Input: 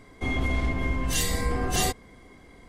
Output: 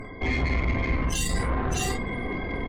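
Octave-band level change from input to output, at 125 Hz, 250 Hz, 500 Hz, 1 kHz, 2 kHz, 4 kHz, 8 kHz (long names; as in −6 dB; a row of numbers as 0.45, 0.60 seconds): +2.0, +2.0, +1.5, +0.5, +2.0, −2.5, −3.0 decibels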